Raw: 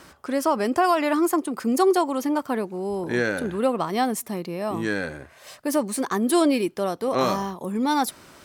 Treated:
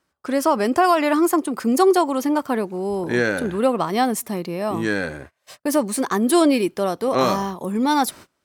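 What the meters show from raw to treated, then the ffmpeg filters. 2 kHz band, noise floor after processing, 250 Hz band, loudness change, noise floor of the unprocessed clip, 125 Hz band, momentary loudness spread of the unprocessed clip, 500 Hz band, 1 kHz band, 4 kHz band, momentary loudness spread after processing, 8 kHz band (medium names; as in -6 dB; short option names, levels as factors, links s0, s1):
+3.5 dB, -73 dBFS, +3.5 dB, +3.5 dB, -52 dBFS, +3.5 dB, 9 LU, +3.5 dB, +3.5 dB, +3.5 dB, 9 LU, +3.5 dB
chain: -af "agate=range=0.0398:threshold=0.00794:ratio=16:detection=peak,volume=1.5"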